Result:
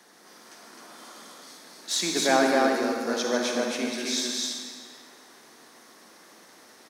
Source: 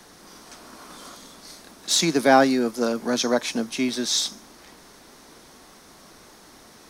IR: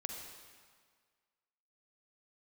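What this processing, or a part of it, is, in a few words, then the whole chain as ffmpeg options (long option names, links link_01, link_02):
stadium PA: -filter_complex "[0:a]highpass=240,equalizer=frequency=1800:width_type=o:width=0.34:gain=4.5,aecho=1:1:148.7|259.5:0.316|0.794[link_01];[1:a]atrim=start_sample=2205[link_02];[link_01][link_02]afir=irnorm=-1:irlink=0,volume=-4.5dB"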